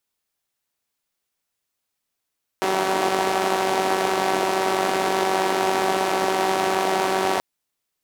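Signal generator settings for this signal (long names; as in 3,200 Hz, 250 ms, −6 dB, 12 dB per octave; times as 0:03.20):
pulse-train model of a four-cylinder engine, steady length 4.78 s, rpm 5,700, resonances 390/700 Hz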